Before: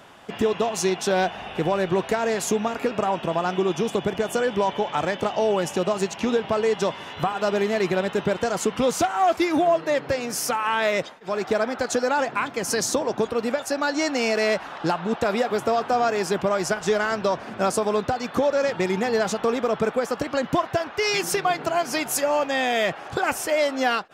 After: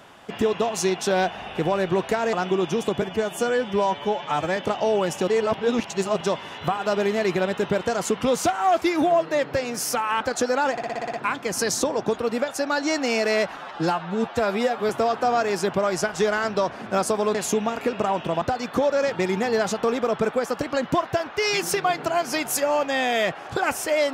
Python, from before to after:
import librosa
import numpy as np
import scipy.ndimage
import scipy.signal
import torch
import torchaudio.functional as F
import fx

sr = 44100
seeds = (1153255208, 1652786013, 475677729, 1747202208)

y = fx.edit(x, sr, fx.move(start_s=2.33, length_s=1.07, to_s=18.02),
    fx.stretch_span(start_s=4.09, length_s=1.03, factor=1.5),
    fx.reverse_span(start_s=5.83, length_s=0.93),
    fx.cut(start_s=10.76, length_s=0.98),
    fx.stutter(start_s=12.25, slice_s=0.06, count=8),
    fx.stretch_span(start_s=14.69, length_s=0.88, factor=1.5), tone=tone)